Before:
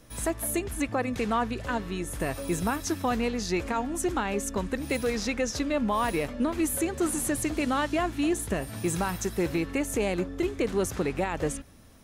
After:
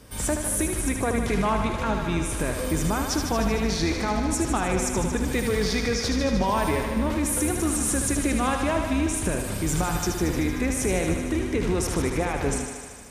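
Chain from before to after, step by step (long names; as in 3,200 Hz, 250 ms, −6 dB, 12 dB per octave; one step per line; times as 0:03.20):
sub-octave generator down 2 octaves, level 0 dB
high-pass filter 40 Hz
brickwall limiter −22 dBFS, peak gain reduction 8 dB
on a send: feedback echo with a high-pass in the loop 70 ms, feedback 78%, high-pass 260 Hz, level −6 dB
on the sum: wrong playback speed 48 kHz file played as 44.1 kHz
level +5.5 dB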